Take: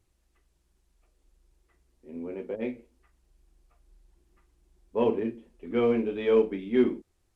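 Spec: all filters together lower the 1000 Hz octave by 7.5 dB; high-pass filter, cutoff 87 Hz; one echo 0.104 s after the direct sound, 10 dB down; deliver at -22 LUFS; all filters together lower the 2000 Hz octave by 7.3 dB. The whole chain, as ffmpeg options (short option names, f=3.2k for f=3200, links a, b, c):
-af "highpass=87,equalizer=f=1k:t=o:g=-8,equalizer=f=2k:t=o:g=-7,aecho=1:1:104:0.316,volume=7dB"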